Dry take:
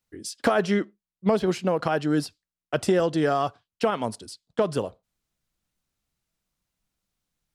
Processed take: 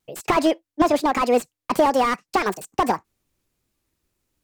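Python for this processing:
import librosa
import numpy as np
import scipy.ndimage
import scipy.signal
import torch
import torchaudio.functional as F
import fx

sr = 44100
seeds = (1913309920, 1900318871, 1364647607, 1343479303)

p1 = fx.speed_glide(x, sr, from_pct=155, to_pct=185)
p2 = fx.vibrato(p1, sr, rate_hz=2.0, depth_cents=24.0)
p3 = fx.rider(p2, sr, range_db=10, speed_s=0.5)
p4 = p2 + (p3 * librosa.db_to_amplitude(-0.5))
y = fx.slew_limit(p4, sr, full_power_hz=170.0)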